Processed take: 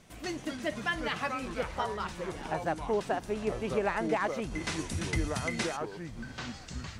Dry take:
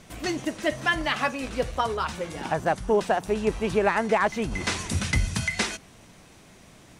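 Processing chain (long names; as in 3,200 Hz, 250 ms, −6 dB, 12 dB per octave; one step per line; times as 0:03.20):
delay with pitch and tempo change per echo 147 ms, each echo −5 semitones, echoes 2, each echo −6 dB
level −8 dB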